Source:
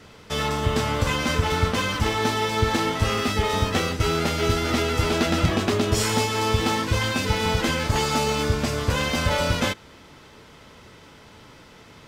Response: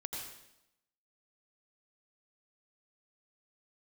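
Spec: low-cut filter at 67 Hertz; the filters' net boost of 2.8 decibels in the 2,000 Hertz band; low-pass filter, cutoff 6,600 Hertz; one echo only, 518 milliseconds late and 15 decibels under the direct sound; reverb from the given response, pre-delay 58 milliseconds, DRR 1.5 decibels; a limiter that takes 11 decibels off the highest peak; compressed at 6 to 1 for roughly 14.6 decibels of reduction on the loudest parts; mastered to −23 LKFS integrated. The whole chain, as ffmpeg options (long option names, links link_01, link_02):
-filter_complex "[0:a]highpass=67,lowpass=6600,equalizer=frequency=2000:width_type=o:gain=3.5,acompressor=threshold=-34dB:ratio=6,alimiter=level_in=7.5dB:limit=-24dB:level=0:latency=1,volume=-7.5dB,aecho=1:1:518:0.178,asplit=2[link_01][link_02];[1:a]atrim=start_sample=2205,adelay=58[link_03];[link_02][link_03]afir=irnorm=-1:irlink=0,volume=-1.5dB[link_04];[link_01][link_04]amix=inputs=2:normalize=0,volume=15dB"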